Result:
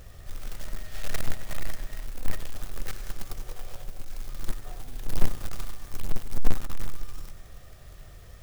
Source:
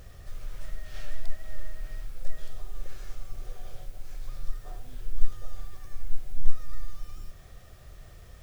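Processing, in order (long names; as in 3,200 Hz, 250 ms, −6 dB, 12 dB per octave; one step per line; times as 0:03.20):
floating-point word with a short mantissa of 2 bits
feedback echo with a swinging delay time 97 ms, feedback 63%, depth 162 cents, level −12.5 dB
level +1 dB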